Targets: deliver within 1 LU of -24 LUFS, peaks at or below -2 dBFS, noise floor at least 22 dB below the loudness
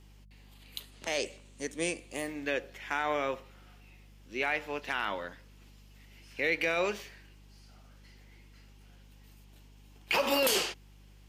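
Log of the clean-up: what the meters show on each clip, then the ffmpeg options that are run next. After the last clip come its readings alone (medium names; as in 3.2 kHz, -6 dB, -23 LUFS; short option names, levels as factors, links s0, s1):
hum 50 Hz; highest harmonic 200 Hz; hum level -53 dBFS; loudness -32.0 LUFS; peak level -18.0 dBFS; loudness target -24.0 LUFS
-> -af "bandreject=f=50:t=h:w=4,bandreject=f=100:t=h:w=4,bandreject=f=150:t=h:w=4,bandreject=f=200:t=h:w=4"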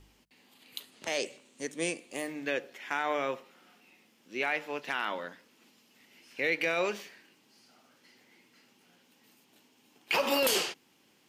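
hum not found; loudness -32.0 LUFS; peak level -18.0 dBFS; loudness target -24.0 LUFS
-> -af "volume=2.51"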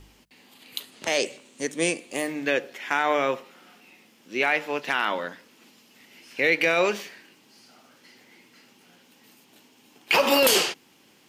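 loudness -24.0 LUFS; peak level -10.0 dBFS; noise floor -58 dBFS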